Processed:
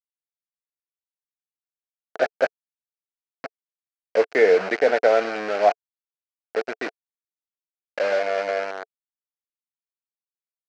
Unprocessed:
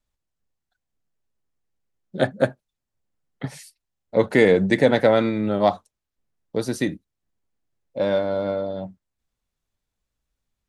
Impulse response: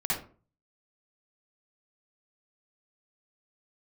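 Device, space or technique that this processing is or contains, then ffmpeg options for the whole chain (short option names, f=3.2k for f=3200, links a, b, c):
hand-held game console: -af "acrusher=bits=3:mix=0:aa=0.000001,highpass=440,equalizer=f=440:t=q:w=4:g=9,equalizer=f=690:t=q:w=4:g=10,equalizer=f=1k:t=q:w=4:g=-4,equalizer=f=1.5k:t=q:w=4:g=8,equalizer=f=2.3k:t=q:w=4:g=4,equalizer=f=3.5k:t=q:w=4:g=-9,lowpass=f=4.9k:w=0.5412,lowpass=f=4.9k:w=1.3066,volume=-5dB"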